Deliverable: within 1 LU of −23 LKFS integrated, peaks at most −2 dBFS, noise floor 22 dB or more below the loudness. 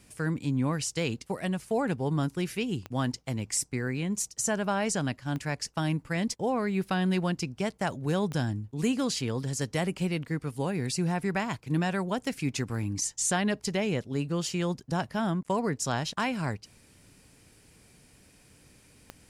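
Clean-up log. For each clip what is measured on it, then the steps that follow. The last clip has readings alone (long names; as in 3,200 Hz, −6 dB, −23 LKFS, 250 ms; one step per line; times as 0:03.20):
number of clicks 4; integrated loudness −30.0 LKFS; sample peak −14.5 dBFS; target loudness −23.0 LKFS
→ click removal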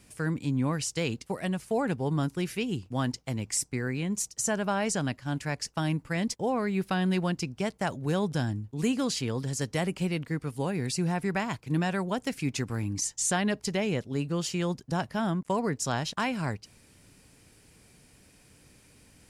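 number of clicks 0; integrated loudness −30.0 LKFS; sample peak −14.5 dBFS; target loudness −23.0 LKFS
→ level +7 dB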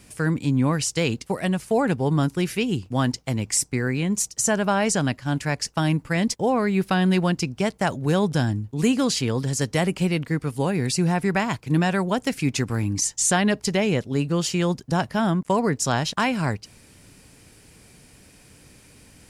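integrated loudness −23.0 LKFS; sample peak −7.5 dBFS; background noise floor −53 dBFS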